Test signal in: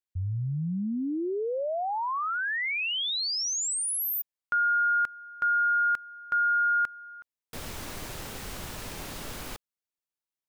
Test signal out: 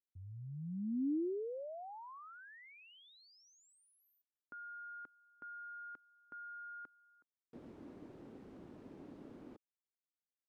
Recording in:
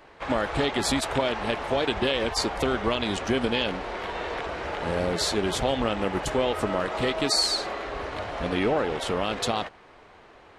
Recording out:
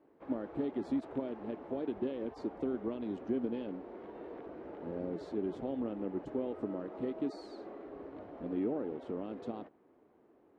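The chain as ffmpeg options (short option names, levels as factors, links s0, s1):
-af "bandpass=f=290:t=q:w=2.2:csg=0,volume=0.596"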